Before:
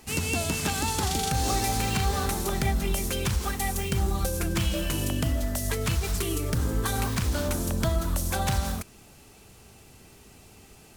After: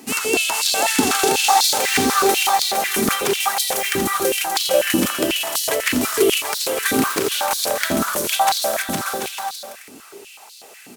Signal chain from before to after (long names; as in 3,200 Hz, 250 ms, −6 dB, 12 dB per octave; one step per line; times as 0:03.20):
high-shelf EQ 9,400 Hz +4 dB
bouncing-ball delay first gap 460 ms, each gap 0.6×, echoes 5
high-pass on a step sequencer 8.1 Hz 260–4,100 Hz
level +6.5 dB